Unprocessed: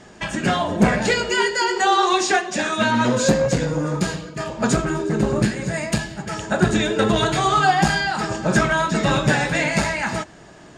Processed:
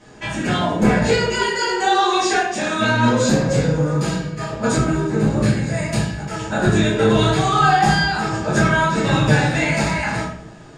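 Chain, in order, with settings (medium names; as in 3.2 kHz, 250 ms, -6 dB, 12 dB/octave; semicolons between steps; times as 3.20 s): simulated room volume 98 m³, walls mixed, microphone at 2 m; trim -8 dB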